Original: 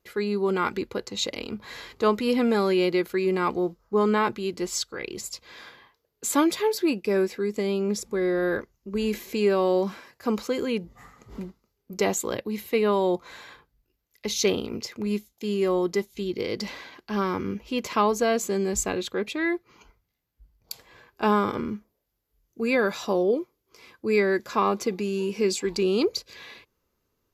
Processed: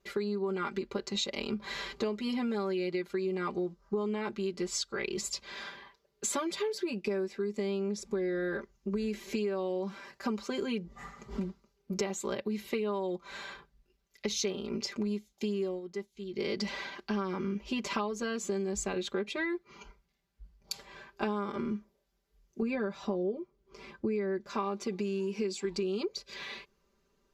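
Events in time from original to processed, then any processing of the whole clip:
15.64–16.48 s: dip -16.5 dB, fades 0.17 s
22.62–24.47 s: tilt EQ -2.5 dB/octave
whole clip: low-pass 7.8 kHz 12 dB/octave; comb 5.1 ms, depth 94%; compression 10:1, threshold -30 dBFS

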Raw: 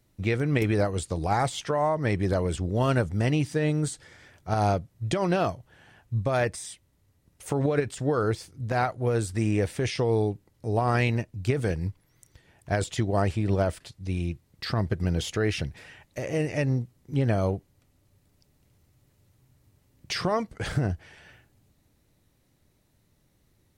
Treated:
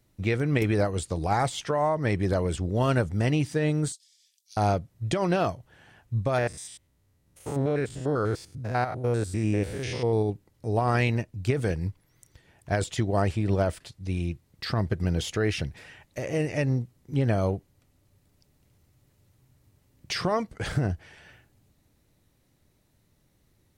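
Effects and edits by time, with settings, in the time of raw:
3.92–4.57 s: inverse Chebyshev high-pass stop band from 1.2 kHz, stop band 60 dB
6.38–10.30 s: spectrogram pixelated in time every 100 ms

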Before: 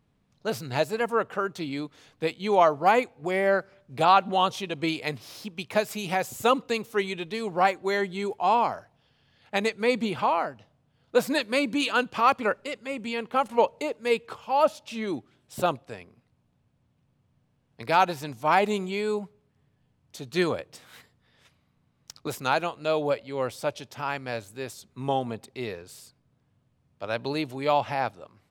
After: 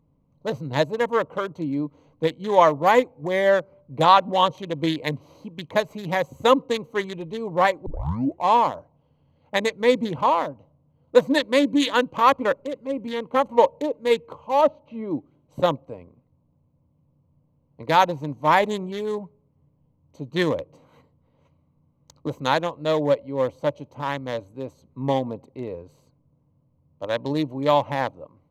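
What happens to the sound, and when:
7.86 s: tape start 0.57 s
14.61–15.11 s: distance through air 270 m
whole clip: local Wiener filter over 25 samples; rippled EQ curve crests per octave 1.1, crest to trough 8 dB; trim +4 dB

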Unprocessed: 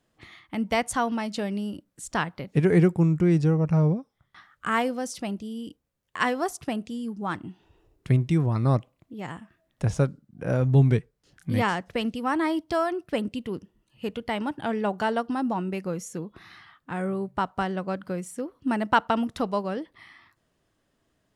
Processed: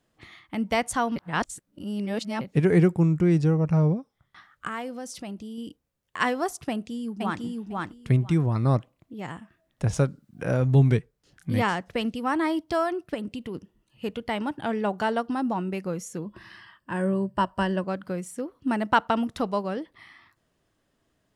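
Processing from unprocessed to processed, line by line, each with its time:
1.16–2.41 s: reverse
4.67–5.58 s: compression 2:1, threshold -36 dBFS
6.70–7.43 s: echo throw 500 ms, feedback 15%, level -1.5 dB
9.93–10.98 s: tape noise reduction on one side only encoder only
13.14–13.55 s: compression 3:1, threshold -30 dBFS
16.25–17.84 s: rippled EQ curve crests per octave 1.3, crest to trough 11 dB

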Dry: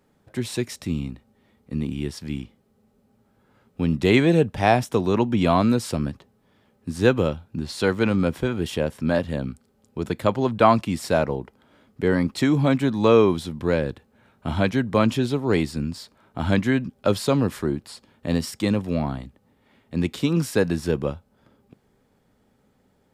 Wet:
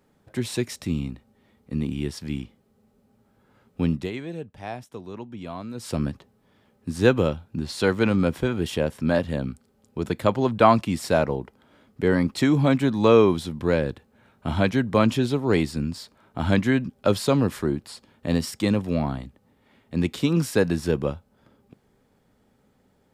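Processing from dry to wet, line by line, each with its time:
3.86–5.99 s: dip -16.5 dB, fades 0.25 s

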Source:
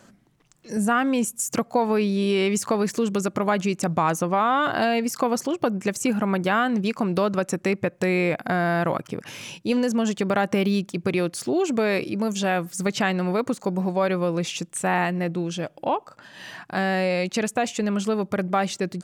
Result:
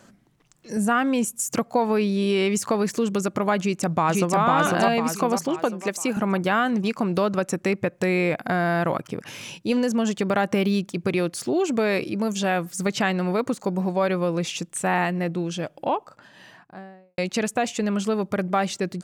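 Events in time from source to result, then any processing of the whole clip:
3.59–4.38 s: echo throw 500 ms, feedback 45%, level -1 dB
5.59–6.17 s: high-pass 260 Hz
15.85–17.18 s: studio fade out

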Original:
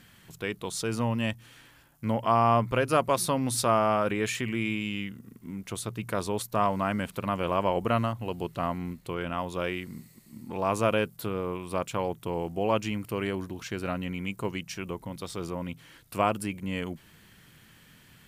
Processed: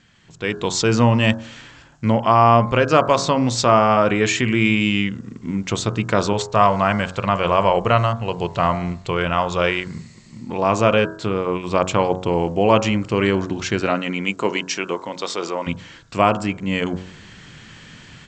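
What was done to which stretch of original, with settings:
6.33–10.41 s: peaking EQ 270 Hz -9.5 dB
13.81–15.66 s: high-pass 200 Hz -> 500 Hz
whole clip: steep low-pass 7.7 kHz 96 dB/octave; de-hum 45.95 Hz, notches 37; level rider gain up to 14.5 dB

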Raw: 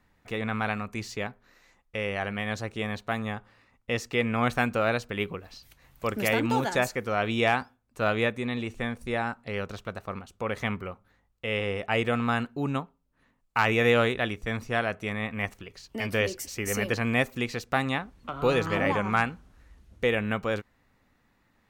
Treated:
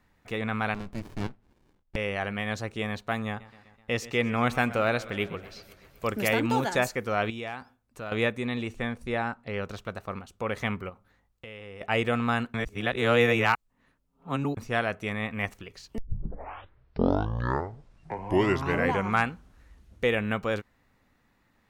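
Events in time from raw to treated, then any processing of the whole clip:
0.74–1.96 s: sliding maximum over 65 samples
3.27–6.10 s: modulated delay 126 ms, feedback 66%, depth 102 cents, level -18 dB
7.30–8.12 s: compression 2:1, threshold -42 dBFS
8.75–9.62 s: low-pass 7.7 kHz -> 3.2 kHz 6 dB/octave
10.89–11.81 s: compression, threshold -40 dBFS
12.54–14.57 s: reverse
15.98 s: tape start 3.18 s

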